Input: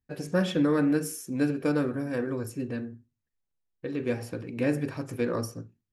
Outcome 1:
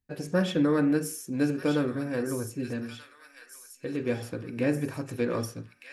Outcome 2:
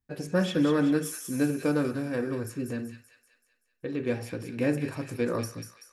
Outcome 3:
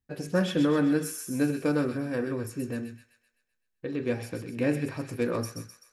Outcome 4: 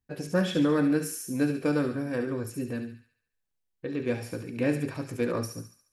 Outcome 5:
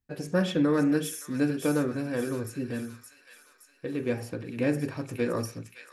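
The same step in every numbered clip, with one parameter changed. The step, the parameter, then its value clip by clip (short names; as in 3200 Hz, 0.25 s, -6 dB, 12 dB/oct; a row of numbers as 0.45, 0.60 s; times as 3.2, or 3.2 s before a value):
thin delay, time: 1233, 191, 128, 71, 569 ms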